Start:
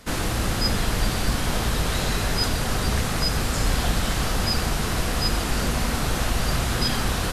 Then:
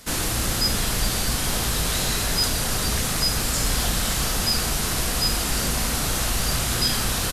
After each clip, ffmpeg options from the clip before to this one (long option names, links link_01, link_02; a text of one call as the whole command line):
ffmpeg -i in.wav -filter_complex "[0:a]highshelf=frequency=4000:gain=11.5,asplit=2[link_01][link_02];[link_02]asoftclip=type=tanh:threshold=-15.5dB,volume=-8dB[link_03];[link_01][link_03]amix=inputs=2:normalize=0,asplit=2[link_04][link_05];[link_05]adelay=35,volume=-11dB[link_06];[link_04][link_06]amix=inputs=2:normalize=0,volume=-5dB" out.wav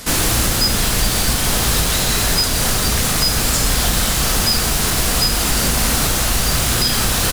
ffmpeg -i in.wav -filter_complex "[0:a]asplit=2[link_01][link_02];[link_02]aeval=exprs='(mod(21.1*val(0)+1,2)-1)/21.1':channel_layout=same,volume=-3.5dB[link_03];[link_01][link_03]amix=inputs=2:normalize=0,alimiter=limit=-14dB:level=0:latency=1:release=294,volume=8dB" out.wav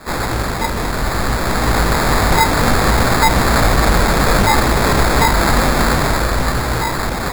ffmpeg -i in.wav -af "flanger=delay=16:depth=6.3:speed=0.61,acrusher=samples=15:mix=1:aa=0.000001,dynaudnorm=framelen=290:gausssize=11:maxgain=11.5dB" out.wav